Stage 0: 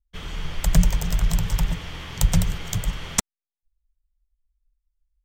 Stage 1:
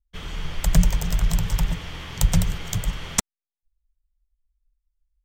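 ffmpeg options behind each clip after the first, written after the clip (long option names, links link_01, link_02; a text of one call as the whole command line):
ffmpeg -i in.wav -af anull out.wav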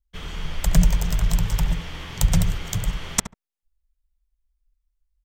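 ffmpeg -i in.wav -filter_complex "[0:a]asplit=2[link_01][link_02];[link_02]adelay=70,lowpass=frequency=1300:poles=1,volume=-9.5dB,asplit=2[link_03][link_04];[link_04]adelay=70,lowpass=frequency=1300:poles=1,volume=0.17[link_05];[link_01][link_03][link_05]amix=inputs=3:normalize=0" out.wav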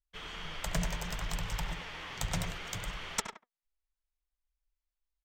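ffmpeg -i in.wav -filter_complex "[0:a]asplit=2[link_01][link_02];[link_02]highpass=frequency=720:poles=1,volume=14dB,asoftclip=type=tanh:threshold=-1dB[link_03];[link_01][link_03]amix=inputs=2:normalize=0,lowpass=frequency=3800:poles=1,volume=-6dB,flanger=delay=0.3:depth=8.8:regen=73:speed=0.66:shape=triangular,asplit=2[link_04][link_05];[link_05]adelay=100,highpass=300,lowpass=3400,asoftclip=type=hard:threshold=-18.5dB,volume=-7dB[link_06];[link_04][link_06]amix=inputs=2:normalize=0,volume=-8dB" out.wav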